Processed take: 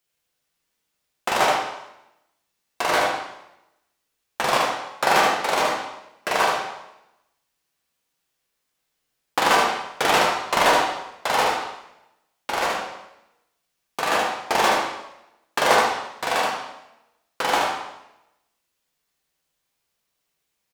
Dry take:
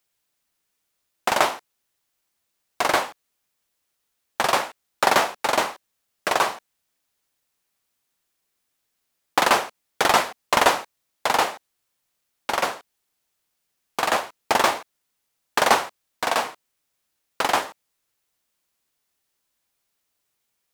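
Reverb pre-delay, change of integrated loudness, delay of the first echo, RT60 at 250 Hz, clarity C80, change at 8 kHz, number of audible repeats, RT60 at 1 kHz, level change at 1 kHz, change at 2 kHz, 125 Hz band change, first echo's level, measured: 4 ms, +0.5 dB, 75 ms, 0.90 s, 4.5 dB, -0.5 dB, 1, 0.85 s, +1.5 dB, +1.5 dB, +2.5 dB, -4.5 dB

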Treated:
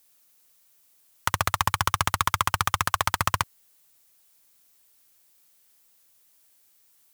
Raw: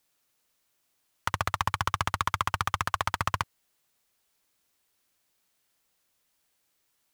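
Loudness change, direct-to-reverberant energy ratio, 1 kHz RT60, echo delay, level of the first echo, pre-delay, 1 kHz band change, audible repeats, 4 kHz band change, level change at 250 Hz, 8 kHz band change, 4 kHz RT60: +4.5 dB, none, none, none, none, none, +4.0 dB, none, +6.0 dB, +3.5 dB, +10.0 dB, none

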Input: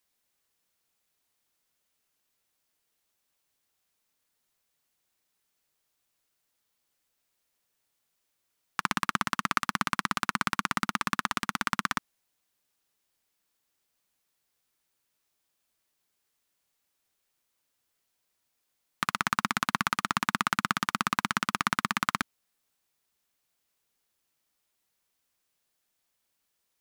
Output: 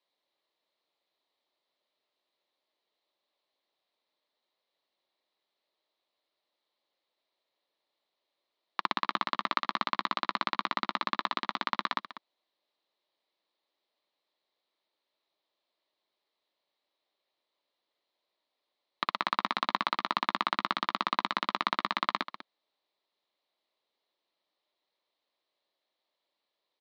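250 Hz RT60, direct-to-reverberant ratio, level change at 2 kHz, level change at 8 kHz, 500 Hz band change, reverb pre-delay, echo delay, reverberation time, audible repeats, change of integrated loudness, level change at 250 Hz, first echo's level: none, none, -5.0 dB, under -20 dB, +3.0 dB, none, 0.195 s, none, 1, -2.0 dB, -6.0 dB, -13.5 dB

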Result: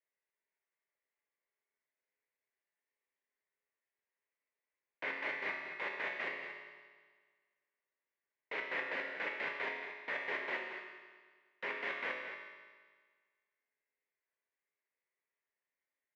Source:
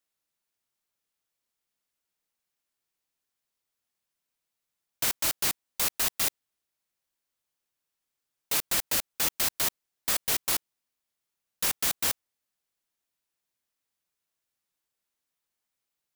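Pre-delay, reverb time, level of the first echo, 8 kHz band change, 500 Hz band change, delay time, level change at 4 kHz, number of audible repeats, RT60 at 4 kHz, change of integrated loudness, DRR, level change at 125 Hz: 5 ms, 1.6 s, -10.5 dB, under -40 dB, -1.5 dB, 0.228 s, -18.0 dB, 1, 1.5 s, -12.5 dB, -1.0 dB, under -15 dB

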